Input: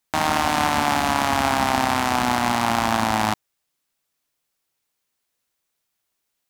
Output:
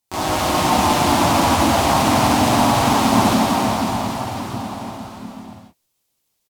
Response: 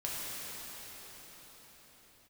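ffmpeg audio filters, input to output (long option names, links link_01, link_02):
-filter_complex "[0:a]equalizer=frequency=1600:width_type=o:width=1.2:gain=-9.5[link_01];[1:a]atrim=start_sample=2205,asetrate=41013,aresample=44100[link_02];[link_01][link_02]afir=irnorm=-1:irlink=0,asplit=3[link_03][link_04][link_05];[link_04]asetrate=37084,aresample=44100,atempo=1.18921,volume=-4dB[link_06];[link_05]asetrate=52444,aresample=44100,atempo=0.840896,volume=-2dB[link_07];[link_03][link_06][link_07]amix=inputs=3:normalize=0,volume=-1dB"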